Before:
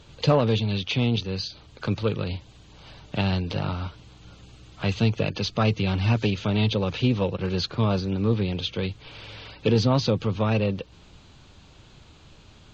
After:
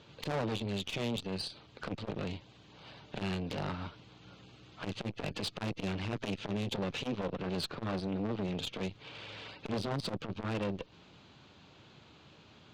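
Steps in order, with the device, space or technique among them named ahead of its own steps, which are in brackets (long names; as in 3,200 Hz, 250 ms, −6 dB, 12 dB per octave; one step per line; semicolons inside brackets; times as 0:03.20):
valve radio (band-pass filter 140–4,500 Hz; tube saturation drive 28 dB, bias 0.65; saturating transformer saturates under 320 Hz)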